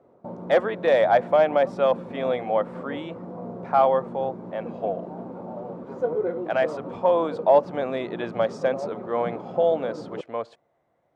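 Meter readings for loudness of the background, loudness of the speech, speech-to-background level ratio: -35.0 LUFS, -24.0 LUFS, 11.0 dB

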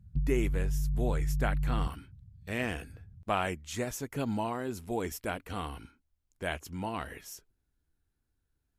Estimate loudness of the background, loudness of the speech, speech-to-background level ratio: -33.5 LUFS, -36.0 LUFS, -2.5 dB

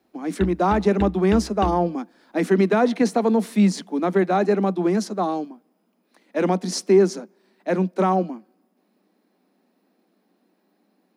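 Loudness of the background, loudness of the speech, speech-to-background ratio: -32.5 LUFS, -21.5 LUFS, 11.0 dB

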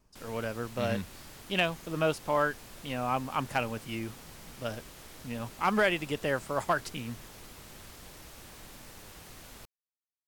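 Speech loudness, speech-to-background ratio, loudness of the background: -32.0 LUFS, 16.5 dB, -48.5 LUFS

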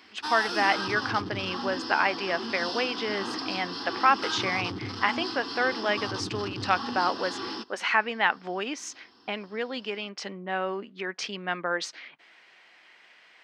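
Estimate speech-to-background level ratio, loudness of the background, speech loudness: 4.5 dB, -33.5 LUFS, -29.0 LUFS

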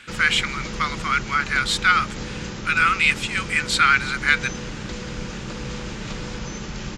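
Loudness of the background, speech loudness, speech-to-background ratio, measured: -32.0 LUFS, -20.0 LUFS, 12.0 dB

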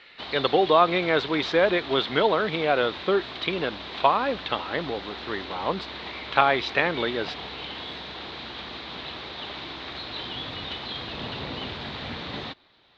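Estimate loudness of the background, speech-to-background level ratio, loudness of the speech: -35.0 LUFS, 10.5 dB, -24.5 LUFS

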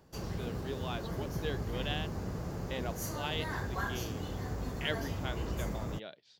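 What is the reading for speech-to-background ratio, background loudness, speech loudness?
-3.0 dB, -38.5 LUFS, -41.5 LUFS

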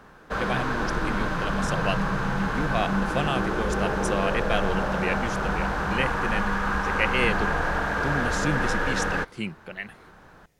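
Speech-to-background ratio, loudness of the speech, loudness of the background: -4.5 dB, -31.0 LUFS, -26.5 LUFS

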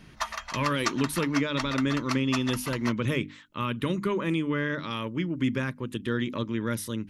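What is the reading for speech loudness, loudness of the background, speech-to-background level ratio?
-29.0 LUFS, -35.0 LUFS, 6.0 dB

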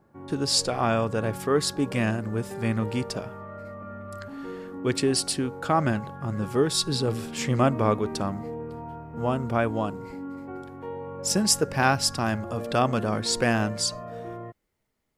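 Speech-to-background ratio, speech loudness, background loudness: 12.0 dB, -26.0 LUFS, -38.0 LUFS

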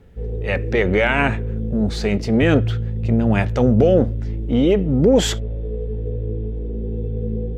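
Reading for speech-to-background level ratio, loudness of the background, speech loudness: 7.0 dB, -26.0 LUFS, -19.0 LUFS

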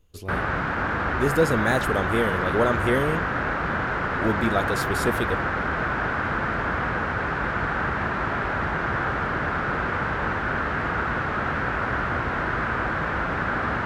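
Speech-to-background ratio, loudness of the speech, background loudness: 0.0 dB, -25.5 LUFS, -25.5 LUFS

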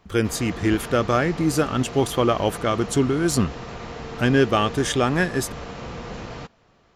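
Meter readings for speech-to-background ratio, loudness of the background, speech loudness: 13.0 dB, -35.0 LUFS, -22.0 LUFS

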